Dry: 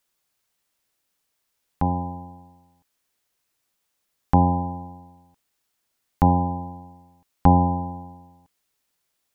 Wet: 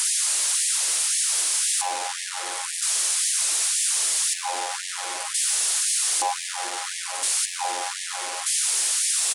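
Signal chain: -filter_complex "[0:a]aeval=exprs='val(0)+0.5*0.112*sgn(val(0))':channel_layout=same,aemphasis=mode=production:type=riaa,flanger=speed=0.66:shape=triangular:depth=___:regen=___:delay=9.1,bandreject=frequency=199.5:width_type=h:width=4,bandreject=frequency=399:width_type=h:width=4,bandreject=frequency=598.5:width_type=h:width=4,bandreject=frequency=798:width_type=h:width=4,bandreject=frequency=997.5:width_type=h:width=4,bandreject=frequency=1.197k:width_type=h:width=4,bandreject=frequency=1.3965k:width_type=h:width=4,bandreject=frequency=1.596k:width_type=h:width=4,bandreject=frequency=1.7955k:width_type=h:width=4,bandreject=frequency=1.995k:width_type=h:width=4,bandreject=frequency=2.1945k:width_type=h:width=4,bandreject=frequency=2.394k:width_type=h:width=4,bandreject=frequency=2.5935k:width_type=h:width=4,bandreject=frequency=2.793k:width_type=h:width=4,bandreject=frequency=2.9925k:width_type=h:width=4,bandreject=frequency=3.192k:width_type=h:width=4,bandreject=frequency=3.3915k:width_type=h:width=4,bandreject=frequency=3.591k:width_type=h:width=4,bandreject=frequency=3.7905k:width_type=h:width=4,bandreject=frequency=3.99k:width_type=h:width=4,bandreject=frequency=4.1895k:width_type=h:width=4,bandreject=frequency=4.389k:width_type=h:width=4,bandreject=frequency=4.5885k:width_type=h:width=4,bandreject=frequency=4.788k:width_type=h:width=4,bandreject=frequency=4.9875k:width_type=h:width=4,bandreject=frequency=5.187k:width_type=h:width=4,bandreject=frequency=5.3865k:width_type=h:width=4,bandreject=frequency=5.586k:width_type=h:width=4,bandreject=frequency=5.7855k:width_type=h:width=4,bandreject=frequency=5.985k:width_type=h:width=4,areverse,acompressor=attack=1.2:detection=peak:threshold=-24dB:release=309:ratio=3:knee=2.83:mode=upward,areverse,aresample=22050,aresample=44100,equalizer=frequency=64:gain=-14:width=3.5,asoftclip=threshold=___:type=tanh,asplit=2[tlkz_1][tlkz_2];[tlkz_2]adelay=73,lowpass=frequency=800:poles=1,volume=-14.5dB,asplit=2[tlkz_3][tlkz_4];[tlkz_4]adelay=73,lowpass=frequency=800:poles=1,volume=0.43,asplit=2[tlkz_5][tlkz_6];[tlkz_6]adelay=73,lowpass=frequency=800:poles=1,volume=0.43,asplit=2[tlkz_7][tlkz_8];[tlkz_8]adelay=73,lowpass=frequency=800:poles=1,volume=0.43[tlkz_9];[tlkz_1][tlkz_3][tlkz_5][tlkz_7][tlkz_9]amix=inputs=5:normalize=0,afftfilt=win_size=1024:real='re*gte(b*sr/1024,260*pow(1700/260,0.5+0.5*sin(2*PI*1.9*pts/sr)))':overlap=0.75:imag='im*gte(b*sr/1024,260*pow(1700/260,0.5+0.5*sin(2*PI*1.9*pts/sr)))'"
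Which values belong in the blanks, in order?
6.1, -83, -10.5dB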